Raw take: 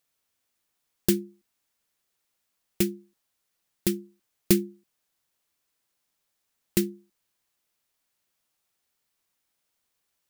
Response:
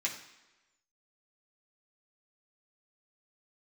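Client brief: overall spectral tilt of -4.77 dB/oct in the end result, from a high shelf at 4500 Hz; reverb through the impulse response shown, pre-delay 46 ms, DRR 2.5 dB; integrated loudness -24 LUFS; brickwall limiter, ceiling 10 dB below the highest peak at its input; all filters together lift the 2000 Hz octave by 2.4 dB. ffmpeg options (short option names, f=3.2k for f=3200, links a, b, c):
-filter_complex "[0:a]equalizer=f=2k:t=o:g=4,highshelf=f=4.5k:g=-4.5,alimiter=limit=-15.5dB:level=0:latency=1,asplit=2[a][b];[1:a]atrim=start_sample=2205,adelay=46[c];[b][c]afir=irnorm=-1:irlink=0,volume=-7dB[d];[a][d]amix=inputs=2:normalize=0,volume=8dB"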